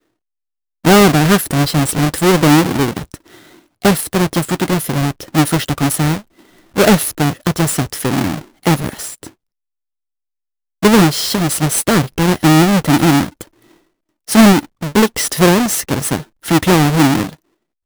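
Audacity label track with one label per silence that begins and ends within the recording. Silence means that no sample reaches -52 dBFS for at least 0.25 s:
9.340000	10.820000	silence
13.800000	14.270000	silence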